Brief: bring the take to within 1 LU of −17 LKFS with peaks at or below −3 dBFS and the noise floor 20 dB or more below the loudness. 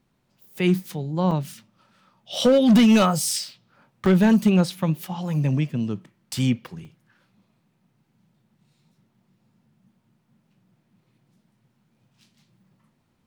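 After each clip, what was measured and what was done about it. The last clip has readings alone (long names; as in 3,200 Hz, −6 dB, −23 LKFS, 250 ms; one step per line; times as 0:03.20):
share of clipped samples 0.6%; peaks flattened at −11.0 dBFS; number of dropouts 4; longest dropout 2.4 ms; integrated loudness −21.0 LKFS; sample peak −11.0 dBFS; target loudness −17.0 LKFS
→ clipped peaks rebuilt −11 dBFS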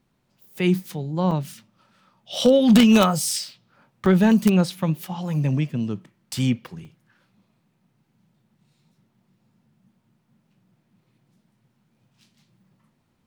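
share of clipped samples 0.0%; number of dropouts 4; longest dropout 2.4 ms
→ repair the gap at 0:01.31/0:03.31/0:04.06/0:06.85, 2.4 ms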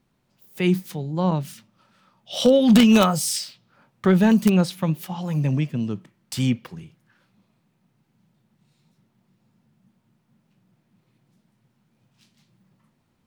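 number of dropouts 0; integrated loudness −20.5 LKFS; sample peak −2.0 dBFS; target loudness −17.0 LKFS
→ level +3.5 dB
brickwall limiter −3 dBFS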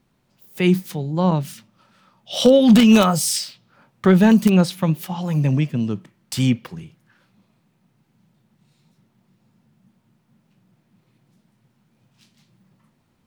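integrated loudness −17.5 LKFS; sample peak −3.0 dBFS; background noise floor −65 dBFS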